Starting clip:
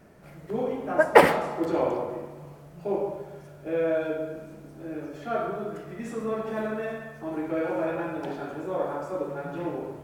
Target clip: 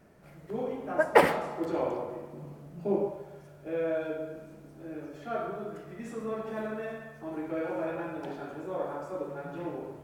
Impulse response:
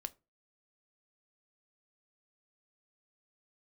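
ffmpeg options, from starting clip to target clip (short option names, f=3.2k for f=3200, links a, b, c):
-filter_complex "[0:a]asettb=1/sr,asplit=3[a][b][c];[a]atrim=end=2.334[d];[b]atrim=start=2.33:end=3.08,asetpts=PTS-STARTPTS,afade=t=in:d=0.004:c=qsin,afade=t=out:st=0.746:d=0.004:c=qsin,equalizer=f=230:t=o:w=1.3:g=11[e];[c]atrim=start=3.076[f];[d][e]acrossfade=d=0.004:c1=hsin:c2=qsin[g];[g][f]acrossfade=d=0.004:c1=qsin:c2=hsin,volume=-5dB"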